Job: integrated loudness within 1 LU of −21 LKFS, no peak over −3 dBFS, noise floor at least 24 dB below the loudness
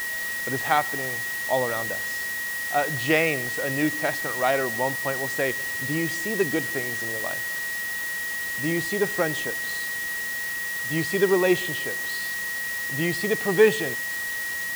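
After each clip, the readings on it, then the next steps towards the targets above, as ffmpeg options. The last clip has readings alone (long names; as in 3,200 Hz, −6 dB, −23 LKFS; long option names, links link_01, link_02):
interfering tone 1,900 Hz; level of the tone −28 dBFS; background noise floor −30 dBFS; target noise floor −49 dBFS; integrated loudness −25.0 LKFS; sample peak −5.5 dBFS; target loudness −21.0 LKFS
→ -af "bandreject=frequency=1900:width=30"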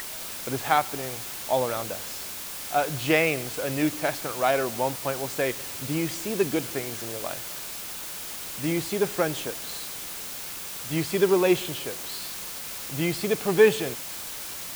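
interfering tone none found; background noise floor −36 dBFS; target noise floor −51 dBFS
→ -af "afftdn=noise_reduction=15:noise_floor=-36"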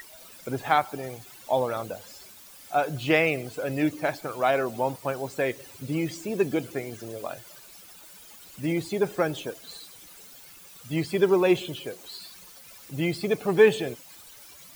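background noise floor −49 dBFS; target noise floor −51 dBFS
→ -af "afftdn=noise_reduction=6:noise_floor=-49"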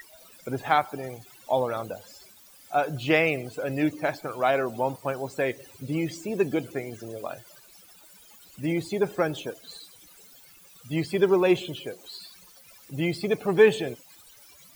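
background noise floor −53 dBFS; integrated loudness −27.0 LKFS; sample peak −6.5 dBFS; target loudness −21.0 LKFS
→ -af "volume=6dB,alimiter=limit=-3dB:level=0:latency=1"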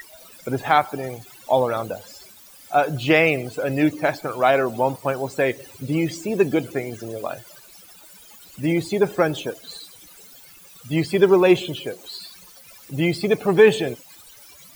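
integrated loudness −21.5 LKFS; sample peak −3.0 dBFS; background noise floor −47 dBFS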